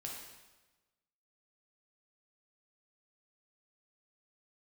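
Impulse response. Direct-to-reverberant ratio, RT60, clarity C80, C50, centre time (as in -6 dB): -2.0 dB, 1.2 s, 4.0 dB, 1.5 dB, 59 ms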